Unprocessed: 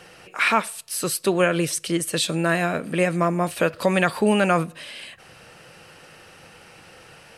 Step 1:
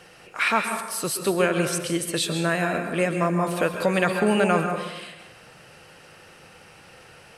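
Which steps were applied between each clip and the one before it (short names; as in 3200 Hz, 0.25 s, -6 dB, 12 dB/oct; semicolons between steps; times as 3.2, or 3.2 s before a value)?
plate-style reverb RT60 1.1 s, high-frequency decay 0.5×, pre-delay 0.115 s, DRR 5.5 dB; gain -2.5 dB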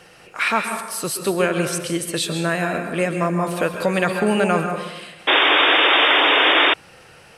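painted sound noise, 5.27–6.74, 270–3700 Hz -17 dBFS; gain +2 dB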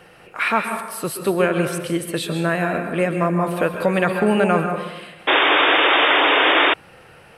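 bell 6200 Hz -11.5 dB 1.4 oct; gain +1.5 dB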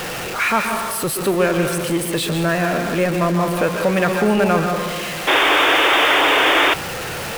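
zero-crossing step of -20.5 dBFS; gain -1 dB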